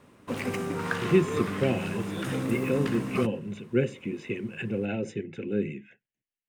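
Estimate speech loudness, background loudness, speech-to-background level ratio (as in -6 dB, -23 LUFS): -30.0 LUFS, -32.0 LUFS, 2.0 dB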